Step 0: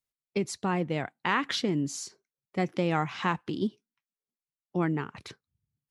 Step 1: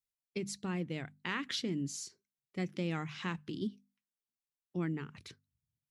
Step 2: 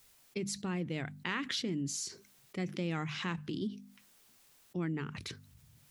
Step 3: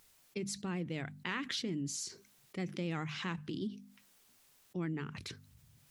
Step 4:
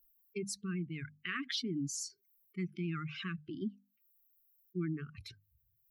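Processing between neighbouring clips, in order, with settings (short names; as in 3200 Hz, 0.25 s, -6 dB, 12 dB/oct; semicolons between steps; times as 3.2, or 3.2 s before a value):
bell 810 Hz -12 dB 1.7 oct; notches 50/100/150/200/250 Hz; gain -4.5 dB
fast leveller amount 50%; gain -1 dB
vibrato 12 Hz 35 cents; gain -2 dB
per-bin expansion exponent 2; brick-wall FIR band-stop 440–1100 Hz; gain +3.5 dB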